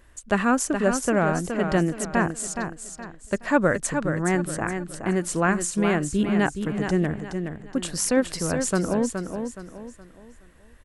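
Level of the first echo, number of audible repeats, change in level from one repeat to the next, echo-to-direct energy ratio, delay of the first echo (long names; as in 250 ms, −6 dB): −7.0 dB, 4, −9.0 dB, −6.5 dB, 420 ms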